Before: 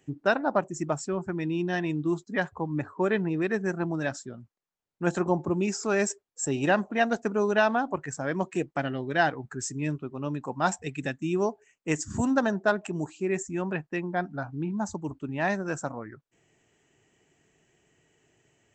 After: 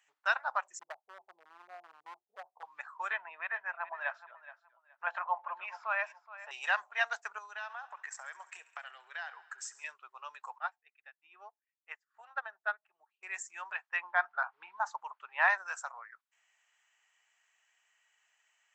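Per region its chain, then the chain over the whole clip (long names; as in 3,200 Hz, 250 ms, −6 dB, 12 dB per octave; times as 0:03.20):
0:00.79–0:02.63: Butterworth low-pass 770 Hz 48 dB per octave + hard clipping −24 dBFS
0:03.13–0:06.51: loudspeaker in its box 180–2,900 Hz, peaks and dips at 400 Hz −9 dB, 630 Hz +10 dB, 970 Hz +7 dB + repeating echo 422 ms, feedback 23%, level −16 dB
0:07.38–0:09.84: downward compressor, threshold −32 dBFS + feedback echo with a high-pass in the loop 68 ms, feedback 75%, high-pass 450 Hz, level −18 dB
0:10.58–0:13.23: Butterworth band-reject 1,000 Hz, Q 7.6 + high-frequency loss of the air 410 metres + expander for the loud parts 2.5 to 1, over −37 dBFS
0:13.89–0:15.58: low-pass filter 4,200 Hz + parametric band 1,000 Hz +9 dB 2.4 octaves
whole clip: inverse Chebyshev high-pass filter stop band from 290 Hz, stop band 60 dB; high-shelf EQ 3,700 Hz −6.5 dB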